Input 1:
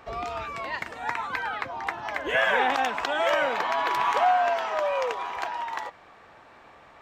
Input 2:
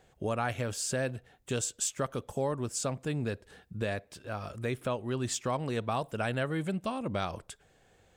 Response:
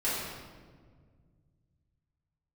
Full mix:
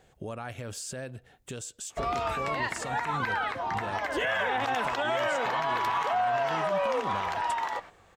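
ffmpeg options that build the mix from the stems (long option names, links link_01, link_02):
-filter_complex "[0:a]bandreject=frequency=2400:width=25,agate=range=-13dB:threshold=-46dB:ratio=16:detection=peak,adelay=1900,volume=3dB[link_01];[1:a]alimiter=level_in=6.5dB:limit=-24dB:level=0:latency=1:release=220,volume=-6.5dB,volume=2dB[link_02];[link_01][link_02]amix=inputs=2:normalize=0,alimiter=limit=-20dB:level=0:latency=1:release=57"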